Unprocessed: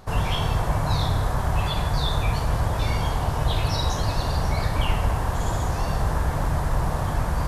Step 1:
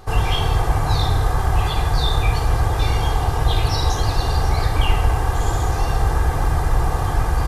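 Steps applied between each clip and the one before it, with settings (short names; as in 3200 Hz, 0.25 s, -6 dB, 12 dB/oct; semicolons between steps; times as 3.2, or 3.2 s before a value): comb 2.5 ms, depth 57%; gain +3 dB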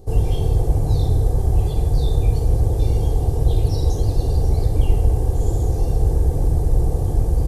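EQ curve 500 Hz 0 dB, 1300 Hz -27 dB, 8700 Hz -6 dB; gain +1.5 dB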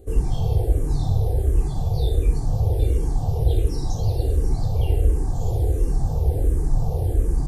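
endless phaser -1.4 Hz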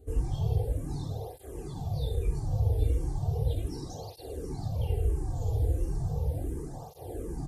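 tape flanging out of phase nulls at 0.36 Hz, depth 5.7 ms; gain -5 dB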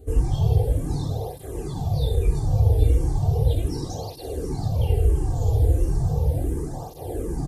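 echo 0.339 s -18.5 dB; gain +8.5 dB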